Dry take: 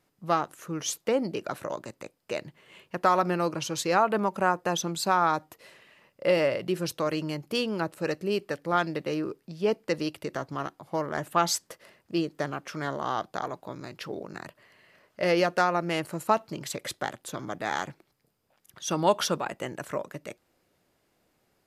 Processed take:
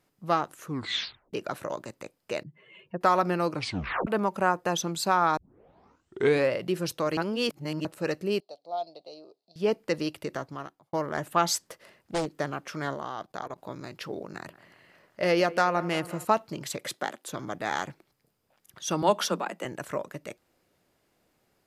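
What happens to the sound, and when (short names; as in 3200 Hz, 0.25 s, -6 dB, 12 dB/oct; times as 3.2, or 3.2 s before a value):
0.66 tape stop 0.67 s
2.43–3.01 spectral contrast raised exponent 2
3.54 tape stop 0.53 s
5.37 tape start 1.15 s
7.17–7.85 reverse
8.4–9.56 double band-pass 1700 Hz, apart 2.6 oct
10.3–10.93 fade out
11.59–12.26 Doppler distortion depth 0.93 ms
12.94–13.58 level quantiser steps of 18 dB
14.3–16.25 dark delay 0.18 s, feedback 62%, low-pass 2200 Hz, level -17 dB
16.77–17.29 HPF 100 Hz -> 280 Hz 24 dB/oct
19.02–19.65 Chebyshev high-pass 170 Hz, order 8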